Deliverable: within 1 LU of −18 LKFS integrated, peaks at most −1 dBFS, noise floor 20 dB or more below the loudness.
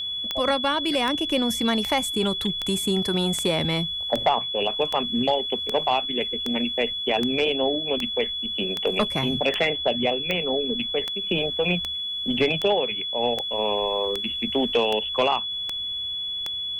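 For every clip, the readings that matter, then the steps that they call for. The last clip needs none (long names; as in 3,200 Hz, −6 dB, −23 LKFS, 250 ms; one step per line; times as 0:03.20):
number of clicks 22; interfering tone 3,400 Hz; level of the tone −27 dBFS; integrated loudness −23.5 LKFS; sample peak −9.5 dBFS; target loudness −18.0 LKFS
→ click removal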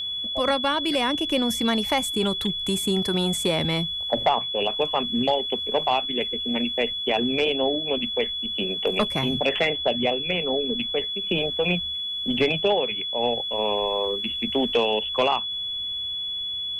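number of clicks 0; interfering tone 3,400 Hz; level of the tone −27 dBFS
→ notch filter 3,400 Hz, Q 30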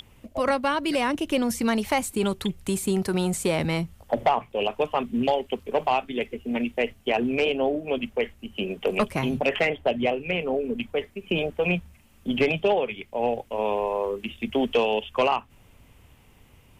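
interfering tone none found; integrated loudness −26.0 LKFS; sample peak −12.5 dBFS; target loudness −18.0 LKFS
→ level +8 dB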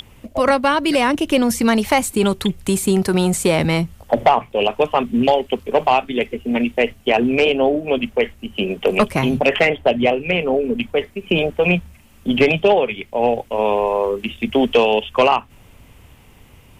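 integrated loudness −18.0 LKFS; sample peak −4.5 dBFS; background noise floor −47 dBFS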